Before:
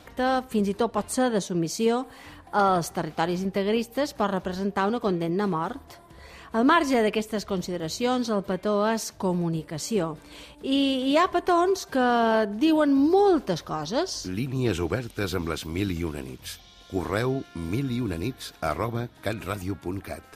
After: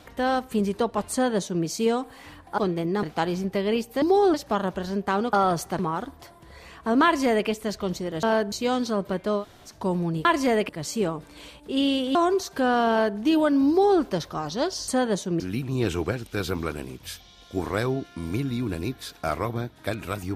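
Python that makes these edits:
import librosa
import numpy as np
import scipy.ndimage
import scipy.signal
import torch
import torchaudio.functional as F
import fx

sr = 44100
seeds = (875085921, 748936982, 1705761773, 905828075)

y = fx.edit(x, sr, fx.duplicate(start_s=1.12, length_s=0.52, to_s=14.24),
    fx.swap(start_s=2.58, length_s=0.46, other_s=5.02, other_length_s=0.45),
    fx.duplicate(start_s=6.72, length_s=0.44, to_s=9.64),
    fx.room_tone_fill(start_s=8.79, length_s=0.3, crossfade_s=0.1),
    fx.cut(start_s=11.1, length_s=0.41),
    fx.duplicate(start_s=12.25, length_s=0.29, to_s=7.91),
    fx.duplicate(start_s=13.05, length_s=0.32, to_s=4.03),
    fx.cut(start_s=15.56, length_s=0.55), tone=tone)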